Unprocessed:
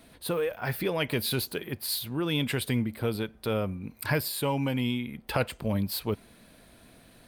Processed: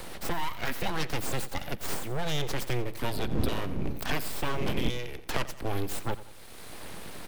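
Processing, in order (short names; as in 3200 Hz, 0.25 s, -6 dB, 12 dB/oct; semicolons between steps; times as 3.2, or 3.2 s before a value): 3.12–4.88 wind noise 110 Hz -26 dBFS; full-wave rectifier; on a send: feedback echo 88 ms, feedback 37%, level -16.5 dB; on the sum: three-band squash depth 70%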